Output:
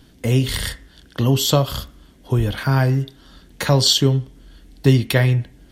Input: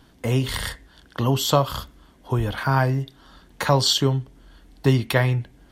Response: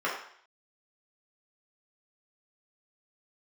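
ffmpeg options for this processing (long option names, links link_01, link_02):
-filter_complex "[0:a]equalizer=frequency=1000:width=1:gain=-9.5,asplit=2[link_01][link_02];[1:a]atrim=start_sample=2205,adelay=23[link_03];[link_02][link_03]afir=irnorm=-1:irlink=0,volume=-29dB[link_04];[link_01][link_04]amix=inputs=2:normalize=0,volume=5dB"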